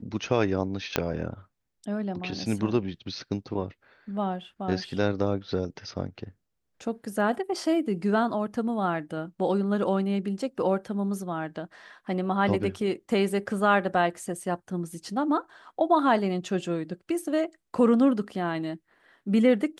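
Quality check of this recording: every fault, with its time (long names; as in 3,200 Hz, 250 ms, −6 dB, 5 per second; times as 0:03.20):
0:00.96: click −8 dBFS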